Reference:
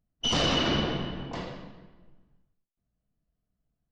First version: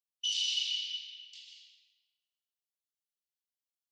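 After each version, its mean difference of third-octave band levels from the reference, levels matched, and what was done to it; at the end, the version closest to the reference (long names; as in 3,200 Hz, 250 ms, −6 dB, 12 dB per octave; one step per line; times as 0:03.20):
21.0 dB: Butterworth high-pass 2,800 Hz 48 dB per octave
dense smooth reverb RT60 0.76 s, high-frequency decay 0.9×, pre-delay 115 ms, DRR 3.5 dB
level −3 dB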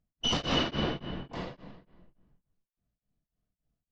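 3.0 dB: high-frequency loss of the air 59 metres
tremolo along a rectified sine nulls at 3.5 Hz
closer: second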